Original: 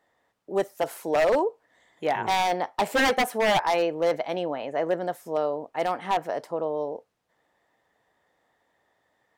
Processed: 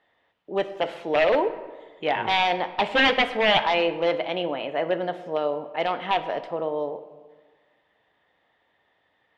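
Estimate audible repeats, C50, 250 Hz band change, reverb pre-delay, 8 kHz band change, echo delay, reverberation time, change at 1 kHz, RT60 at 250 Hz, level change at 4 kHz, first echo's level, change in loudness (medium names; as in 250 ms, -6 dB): no echo, 12.5 dB, +1.0 dB, 5 ms, under -10 dB, no echo, 1.4 s, +1.0 dB, 1.5 s, +7.0 dB, no echo, +2.0 dB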